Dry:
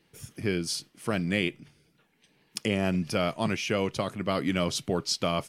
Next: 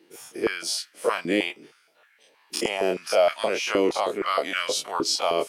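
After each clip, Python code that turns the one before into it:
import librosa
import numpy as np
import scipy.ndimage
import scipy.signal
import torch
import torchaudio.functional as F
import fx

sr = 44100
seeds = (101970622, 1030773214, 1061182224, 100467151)

y = fx.spec_dilate(x, sr, span_ms=60)
y = fx.dynamic_eq(y, sr, hz=1400.0, q=1.2, threshold_db=-38.0, ratio=4.0, max_db=-4)
y = fx.filter_held_highpass(y, sr, hz=6.4, low_hz=330.0, high_hz=1600.0)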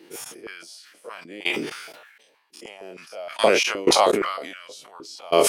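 y = fx.step_gate(x, sr, bpm=62, pattern='x.....x.', floor_db=-24.0, edge_ms=4.5)
y = fx.sustainer(y, sr, db_per_s=49.0)
y = y * librosa.db_to_amplitude(7.5)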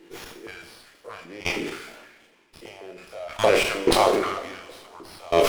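y = fx.rev_double_slope(x, sr, seeds[0], early_s=0.78, late_s=3.1, knee_db=-21, drr_db=4.5)
y = fx.running_max(y, sr, window=5)
y = y * librosa.db_to_amplitude(-2.0)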